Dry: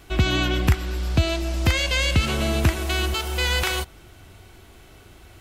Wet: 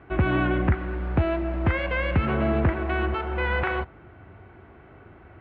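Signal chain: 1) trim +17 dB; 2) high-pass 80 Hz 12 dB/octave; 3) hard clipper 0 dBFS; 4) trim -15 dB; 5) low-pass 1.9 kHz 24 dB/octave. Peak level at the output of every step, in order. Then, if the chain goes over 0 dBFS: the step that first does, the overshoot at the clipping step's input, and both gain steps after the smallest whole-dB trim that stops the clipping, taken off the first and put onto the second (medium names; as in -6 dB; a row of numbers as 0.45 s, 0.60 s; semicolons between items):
+9.5 dBFS, +9.5 dBFS, 0.0 dBFS, -15.0 dBFS, -13.5 dBFS; step 1, 9.5 dB; step 1 +7 dB, step 4 -5 dB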